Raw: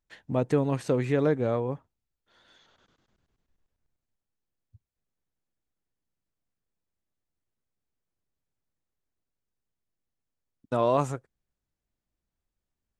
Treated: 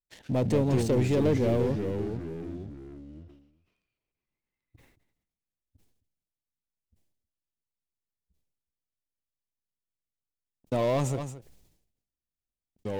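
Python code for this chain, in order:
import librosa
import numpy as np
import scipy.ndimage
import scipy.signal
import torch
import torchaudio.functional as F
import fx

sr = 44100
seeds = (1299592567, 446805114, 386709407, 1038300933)

y = fx.leveller(x, sr, passes=3)
y = fx.peak_eq(y, sr, hz=1400.0, db=-11.0, octaves=1.1)
y = y + 10.0 ** (-23.0 / 20.0) * np.pad(y, (int(222 * sr / 1000.0), 0))[:len(y)]
y = fx.echo_pitch(y, sr, ms=106, semitones=-3, count=3, db_per_echo=-6.0)
y = fx.sustainer(y, sr, db_per_s=67.0)
y = y * librosa.db_to_amplitude(-7.0)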